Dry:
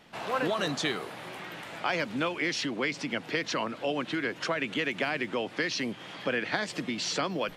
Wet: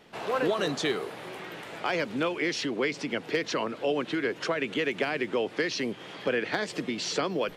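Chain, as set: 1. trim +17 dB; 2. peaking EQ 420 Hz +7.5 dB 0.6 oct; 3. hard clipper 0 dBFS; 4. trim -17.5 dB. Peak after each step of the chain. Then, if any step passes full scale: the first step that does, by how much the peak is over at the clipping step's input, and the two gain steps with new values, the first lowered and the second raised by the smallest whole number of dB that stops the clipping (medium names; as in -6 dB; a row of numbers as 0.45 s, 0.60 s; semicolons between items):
+3.0 dBFS, +3.5 dBFS, 0.0 dBFS, -17.5 dBFS; step 1, 3.5 dB; step 1 +13 dB, step 4 -13.5 dB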